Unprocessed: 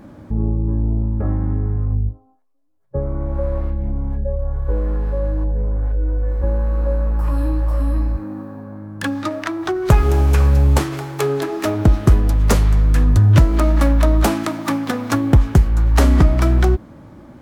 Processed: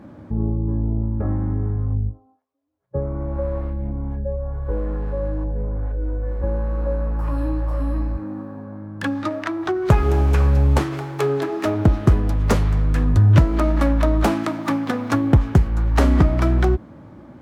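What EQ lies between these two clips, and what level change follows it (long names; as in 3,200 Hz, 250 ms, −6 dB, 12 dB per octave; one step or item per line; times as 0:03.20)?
high-pass filter 60 Hz
high-shelf EQ 5,000 Hz −10.5 dB
−1.0 dB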